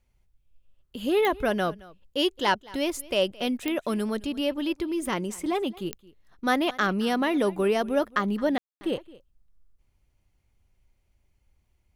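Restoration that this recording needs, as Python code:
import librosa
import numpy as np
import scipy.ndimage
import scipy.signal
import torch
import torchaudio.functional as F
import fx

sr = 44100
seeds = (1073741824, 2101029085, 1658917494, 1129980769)

y = fx.fix_declick_ar(x, sr, threshold=10.0)
y = fx.fix_ambience(y, sr, seeds[0], print_start_s=10.05, print_end_s=10.55, start_s=8.58, end_s=8.81)
y = fx.fix_echo_inverse(y, sr, delay_ms=219, level_db=-21.5)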